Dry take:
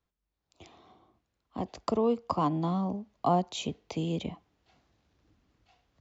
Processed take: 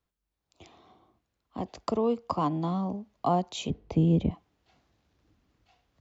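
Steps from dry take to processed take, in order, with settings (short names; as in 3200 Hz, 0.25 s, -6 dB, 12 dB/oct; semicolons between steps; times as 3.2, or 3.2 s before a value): 3.7–4.31 tilt -4 dB/oct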